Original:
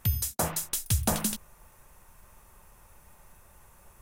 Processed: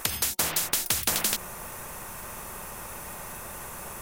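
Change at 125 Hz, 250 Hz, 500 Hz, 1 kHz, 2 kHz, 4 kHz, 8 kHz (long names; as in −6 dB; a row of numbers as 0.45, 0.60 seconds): −10.0, −5.0, 0.0, +2.5, +9.0, +8.5, +4.5 decibels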